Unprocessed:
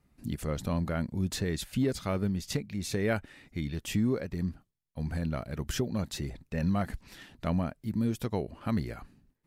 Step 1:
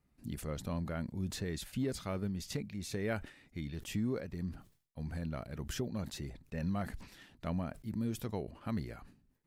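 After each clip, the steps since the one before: sustainer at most 130 dB/s; gain -7 dB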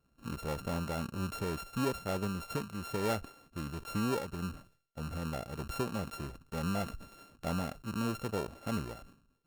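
sample sorter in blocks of 32 samples; bell 530 Hz +7.5 dB 1.3 oct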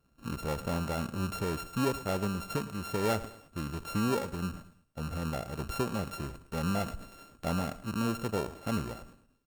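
feedback echo 0.108 s, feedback 37%, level -16.5 dB; gain +3 dB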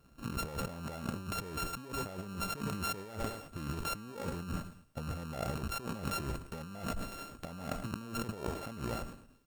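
negative-ratio compressor -41 dBFS, ratio -1; gain +1 dB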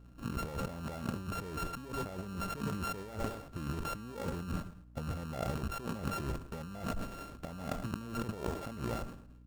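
median filter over 15 samples; hum 60 Hz, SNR 17 dB; gain +1 dB

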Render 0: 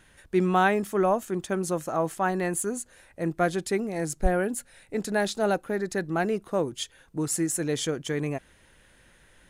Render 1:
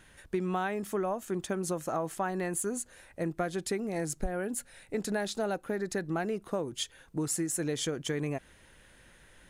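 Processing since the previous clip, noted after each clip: compressor 10:1, threshold -28 dBFS, peak gain reduction 13.5 dB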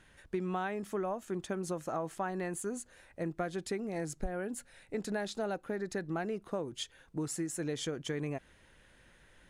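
high shelf 9900 Hz -11 dB; gain -3.5 dB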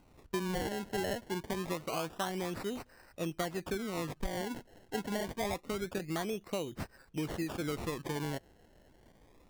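decimation with a swept rate 25×, swing 100% 0.26 Hz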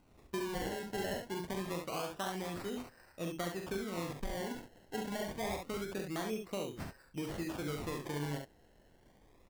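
early reflections 41 ms -6.5 dB, 69 ms -5.5 dB; gain -4 dB

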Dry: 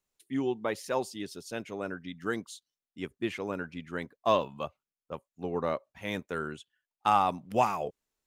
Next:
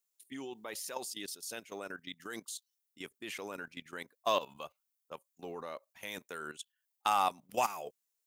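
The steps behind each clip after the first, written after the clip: RIAA curve recording; level quantiser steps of 14 dB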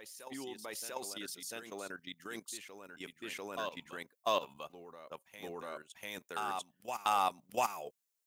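reverse echo 0.694 s -8 dB; gain -1.5 dB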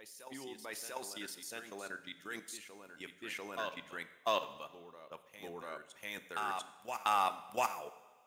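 dynamic EQ 1800 Hz, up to +6 dB, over -51 dBFS, Q 1.2; on a send at -11 dB: reverb, pre-delay 3 ms; on the sum: gain -2.5 dB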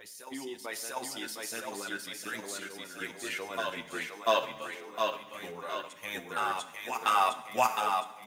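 on a send: thinning echo 0.711 s, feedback 47%, high-pass 150 Hz, level -4 dB; on the sum: endless flanger 8 ms -0.33 Hz; gain +8.5 dB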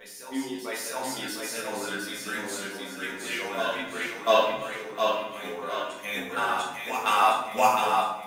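shoebox room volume 170 m³, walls mixed, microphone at 1.6 m

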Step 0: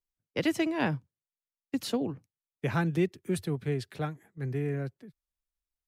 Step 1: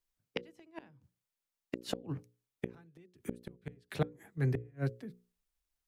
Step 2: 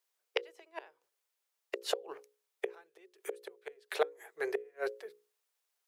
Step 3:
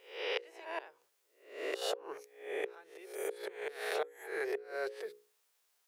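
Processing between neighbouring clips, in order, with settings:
flipped gate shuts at -23 dBFS, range -36 dB; notches 60/120/180/240/300/360/420/480/540 Hz; gain +4.5 dB
elliptic high-pass 400 Hz, stop band 40 dB; gain +6.5 dB
spectral swells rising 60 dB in 0.49 s; compressor 3:1, threshold -42 dBFS, peak gain reduction 14.5 dB; gain +5.5 dB

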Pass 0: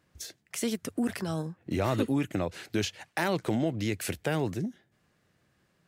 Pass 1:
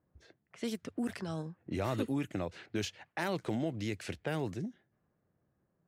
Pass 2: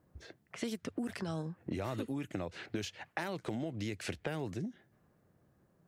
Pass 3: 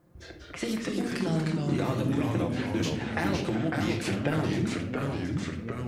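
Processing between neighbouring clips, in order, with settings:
low-pass opened by the level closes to 900 Hz, open at -25.5 dBFS; gain -6 dB
compressor 6:1, threshold -43 dBFS, peak gain reduction 14 dB; gain +8 dB
on a send at -2 dB: reverb RT60 0.65 s, pre-delay 6 ms; on the sum: echoes that change speed 0.164 s, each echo -2 st, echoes 3; gain +5 dB

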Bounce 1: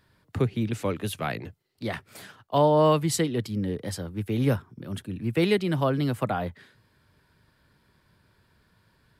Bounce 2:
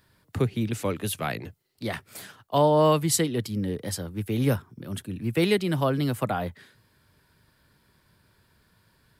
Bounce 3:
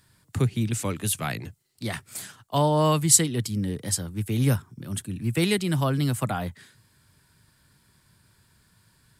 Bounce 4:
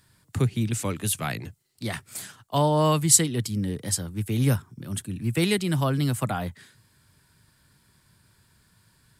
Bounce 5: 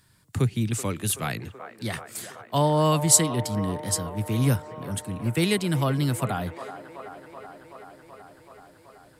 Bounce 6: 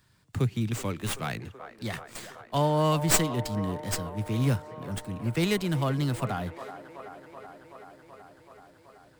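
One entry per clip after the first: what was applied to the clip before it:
high shelf 6400 Hz +8.5 dB
graphic EQ 125/500/8000 Hz +4/-5/+10 dB
nothing audible
band-limited delay 0.379 s, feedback 77%, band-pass 860 Hz, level -9.5 dB
running maximum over 3 samples; gain -3 dB

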